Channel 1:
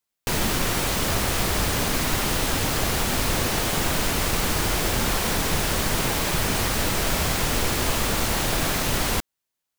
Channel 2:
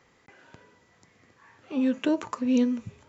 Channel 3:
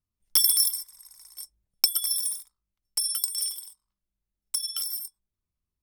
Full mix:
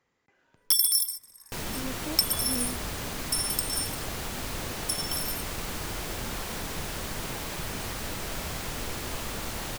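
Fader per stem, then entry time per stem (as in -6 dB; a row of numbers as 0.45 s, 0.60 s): -11.0 dB, -13.5 dB, -2.0 dB; 1.25 s, 0.00 s, 0.35 s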